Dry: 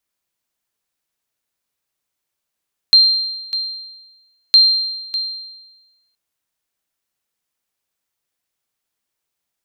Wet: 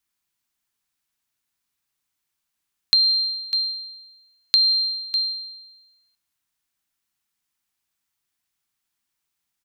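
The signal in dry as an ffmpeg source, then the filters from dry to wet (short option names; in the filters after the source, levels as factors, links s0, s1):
-f lavfi -i "aevalsrc='0.668*(sin(2*PI*4170*mod(t,1.61))*exp(-6.91*mod(t,1.61)/1.16)+0.211*sin(2*PI*4170*max(mod(t,1.61)-0.6,0))*exp(-6.91*max(mod(t,1.61)-0.6,0)/1.16))':d=3.22:s=44100"
-filter_complex "[0:a]equalizer=f=520:w=2.2:g=-13,acompressor=threshold=0.178:ratio=6,asplit=2[s0][s1];[s1]adelay=184,lowpass=f=1800:p=1,volume=0.126,asplit=2[s2][s3];[s3]adelay=184,lowpass=f=1800:p=1,volume=0.31,asplit=2[s4][s5];[s5]adelay=184,lowpass=f=1800:p=1,volume=0.31[s6];[s0][s2][s4][s6]amix=inputs=4:normalize=0"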